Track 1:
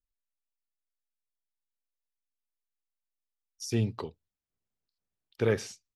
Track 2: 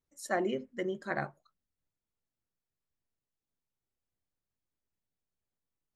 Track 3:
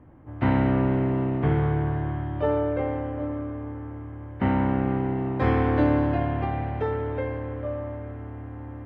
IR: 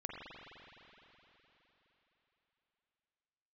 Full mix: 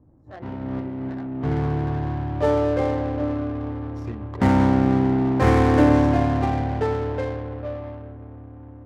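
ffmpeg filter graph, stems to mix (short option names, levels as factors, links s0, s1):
-filter_complex "[0:a]equalizer=f=2000:w=5.7:g=10,acompressor=threshold=0.0282:ratio=6,adelay=350,volume=1[s0];[1:a]flanger=delay=17.5:depth=7.4:speed=0.71,volume=0.501,asplit=2[s1][s2];[2:a]dynaudnorm=f=450:g=9:m=4.22,volume=0.562,asplit=2[s3][s4];[s4]volume=0.266[s5];[s2]apad=whole_len=390705[s6];[s3][s6]sidechaincompress=threshold=0.00282:ratio=5:attack=44:release=339[s7];[3:a]atrim=start_sample=2205[s8];[s5][s8]afir=irnorm=-1:irlink=0[s9];[s0][s1][s7][s9]amix=inputs=4:normalize=0,adynamicsmooth=sensitivity=4.5:basefreq=630"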